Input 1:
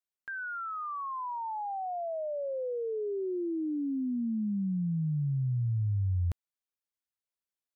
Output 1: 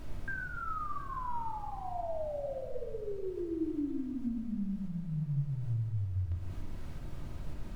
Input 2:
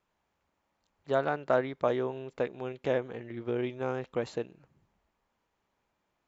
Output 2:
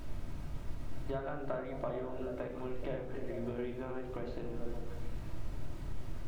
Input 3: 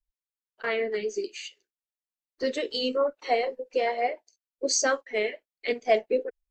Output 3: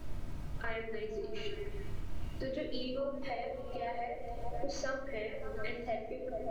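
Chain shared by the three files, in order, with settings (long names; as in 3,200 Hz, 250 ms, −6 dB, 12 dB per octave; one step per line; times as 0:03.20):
running median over 5 samples
high-frequency loss of the air 150 metres
mains-hum notches 60/120/180/240/300/360 Hz
on a send: echo through a band-pass that steps 143 ms, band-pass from 190 Hz, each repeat 0.7 octaves, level −5.5 dB
on the sum: background noise brown −43 dBFS
downward compressor 6 to 1, threshold −39 dBFS
rectangular room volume 2,100 cubic metres, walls furnished, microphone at 2.8 metres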